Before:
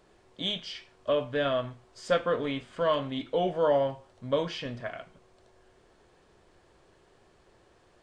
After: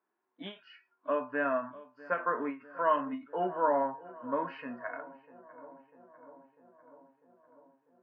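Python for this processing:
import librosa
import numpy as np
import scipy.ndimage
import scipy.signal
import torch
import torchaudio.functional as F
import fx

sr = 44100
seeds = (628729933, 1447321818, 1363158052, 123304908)

p1 = fx.noise_reduce_blind(x, sr, reduce_db=20)
p2 = p1 + fx.echo_filtered(p1, sr, ms=647, feedback_pct=72, hz=1800.0, wet_db=-18.5, dry=0)
p3 = fx.hpss(p2, sr, part='percussive', gain_db=-5)
p4 = fx.cabinet(p3, sr, low_hz=220.0, low_slope=24, high_hz=2500.0, hz=(250.0, 510.0, 980.0, 1500.0), db=(4, -8, 10, 7))
p5 = fx.end_taper(p4, sr, db_per_s=190.0)
y = p5 * 10.0 ** (-1.5 / 20.0)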